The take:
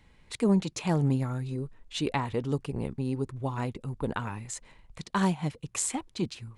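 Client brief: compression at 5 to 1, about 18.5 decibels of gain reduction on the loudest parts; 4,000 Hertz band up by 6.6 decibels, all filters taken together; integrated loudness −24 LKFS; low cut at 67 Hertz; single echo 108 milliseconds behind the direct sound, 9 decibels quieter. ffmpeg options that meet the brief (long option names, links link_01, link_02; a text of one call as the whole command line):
ffmpeg -i in.wav -af "highpass=67,equalizer=frequency=4000:width_type=o:gain=8,acompressor=threshold=-42dB:ratio=5,aecho=1:1:108:0.355,volume=20dB" out.wav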